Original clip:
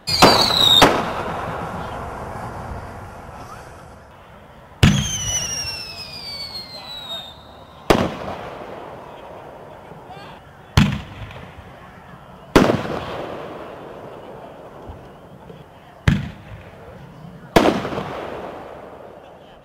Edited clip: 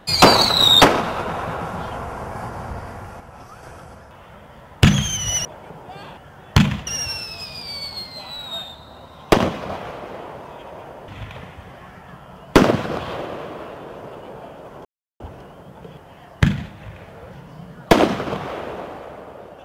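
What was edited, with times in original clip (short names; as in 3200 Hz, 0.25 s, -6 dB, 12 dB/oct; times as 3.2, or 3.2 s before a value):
3.2–3.63 gain -5 dB
9.66–11.08 move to 5.45
14.85 insert silence 0.35 s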